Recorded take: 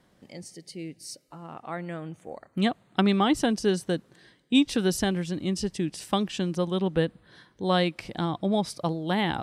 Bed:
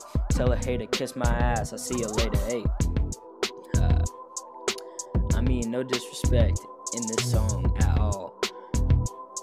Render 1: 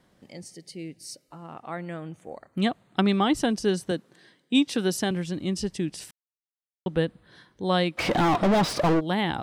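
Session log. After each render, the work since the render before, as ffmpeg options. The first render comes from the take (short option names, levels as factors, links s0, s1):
-filter_complex "[0:a]asettb=1/sr,asplit=3[s0][s1][s2];[s0]atrim=end=3.914[s3];[s1]atrim=start=3.91:end=5.11,asetpts=PTS-STARTPTS,afade=t=in:d=0.004:c=qsin,afade=t=out:st=1.196:d=0.004:c=qsin,highpass=160[s4];[s2]atrim=start=5.106[s5];[s3][s4]acrossfade=d=0.004:c1=hsin:c2=qsin[s6];[s6][s5]acrossfade=d=0.004:c1=qsin:c2=hsin,asplit=3[s7][s8][s9];[s7]afade=t=out:st=7.97:d=0.02[s10];[s8]asplit=2[s11][s12];[s12]highpass=f=720:p=1,volume=79.4,asoftclip=type=tanh:threshold=0.211[s13];[s11][s13]amix=inputs=2:normalize=0,lowpass=f=1500:p=1,volume=0.501,afade=t=in:st=7.97:d=0.02,afade=t=out:st=8.99:d=0.02[s14];[s9]afade=t=in:st=8.99:d=0.02[s15];[s10][s14][s15]amix=inputs=3:normalize=0,asplit=3[s16][s17][s18];[s16]atrim=end=6.11,asetpts=PTS-STARTPTS,afade=t=out:st=6.106:d=0.004:c=hsin[s19];[s17]atrim=start=6.11:end=6.86,asetpts=PTS-STARTPTS,volume=0[s20];[s18]atrim=start=6.86,asetpts=PTS-STARTPTS,afade=t=in:d=0.004:c=hsin[s21];[s19][s20][s21]concat=n=3:v=0:a=1"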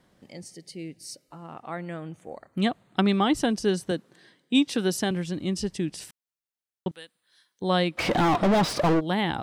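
-filter_complex "[0:a]asettb=1/sr,asplit=3[s0][s1][s2];[s0]atrim=end=6.914[s3];[s1]atrim=start=6.91:end=7.62,asetpts=PTS-STARTPTS,afade=t=in:d=0.004:c=qsin,afade=t=out:st=0.706:d=0.004:c=qsin,aderivative[s4];[s2]atrim=start=7.616[s5];[s3][s4]acrossfade=d=0.004:c1=hsin:c2=qsin[s6];[s6][s5]acrossfade=d=0.004:c1=qsin:c2=hsin"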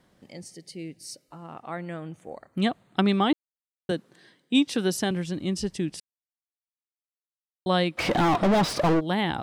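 -filter_complex "[0:a]asplit=5[s0][s1][s2][s3][s4];[s0]atrim=end=3.33,asetpts=PTS-STARTPTS,afade=t=out:st=3.326:d=0.004:c=hsin[s5];[s1]atrim=start=3.33:end=3.89,asetpts=PTS-STARTPTS,volume=0[s6];[s2]atrim=start=3.89:end=6,asetpts=PTS-STARTPTS,afade=t=in:d=0.004:c=hsin,afade=t=out:st=2.106:d=0.004:c=hsin[s7];[s3]atrim=start=6:end=7.66,asetpts=PTS-STARTPTS,volume=0[s8];[s4]atrim=start=7.66,asetpts=PTS-STARTPTS,afade=t=in:d=0.004:c=hsin[s9];[s5][s6][s7][s8][s9]concat=n=5:v=0:a=1"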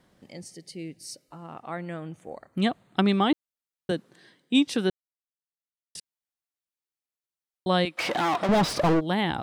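-filter_complex "[0:a]asettb=1/sr,asplit=3[s0][s1][s2];[s0]atrim=end=7.854[s3];[s1]atrim=start=7.85:end=8.49,asetpts=PTS-STARTPTS,afade=t=in:d=0.004:c=qsin,afade=t=out:st=0.636:d=0.004:c=qsin,highpass=f=600:p=1[s4];[s2]atrim=start=8.486[s5];[s3][s4]acrossfade=d=0.004:c1=hsin:c2=qsin[s6];[s6][s5]acrossfade=d=0.004:c1=qsin:c2=hsin,asplit=3[s7][s8][s9];[s7]atrim=end=4.9,asetpts=PTS-STARTPTS,afade=t=out:st=4.896:d=0.004:c=hsin[s10];[s8]atrim=start=4.9:end=5.95,asetpts=PTS-STARTPTS,volume=0[s11];[s9]atrim=start=5.95,asetpts=PTS-STARTPTS,afade=t=in:d=0.004:c=hsin[s12];[s10][s11][s12]concat=n=3:v=0:a=1"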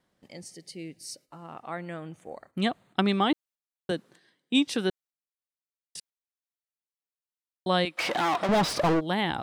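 -af "lowshelf=f=390:g=-4,agate=range=0.355:threshold=0.00224:ratio=16:detection=peak"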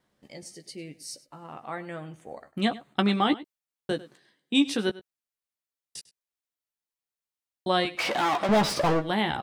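-filter_complex "[0:a]asplit=2[s0][s1];[s1]adelay=14,volume=0.447[s2];[s0][s2]amix=inputs=2:normalize=0,asplit=2[s3][s4];[s4]adelay=99.13,volume=0.126,highshelf=f=4000:g=-2.23[s5];[s3][s5]amix=inputs=2:normalize=0"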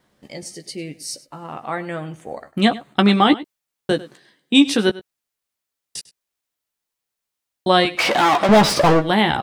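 -af "volume=2.99,alimiter=limit=0.794:level=0:latency=1"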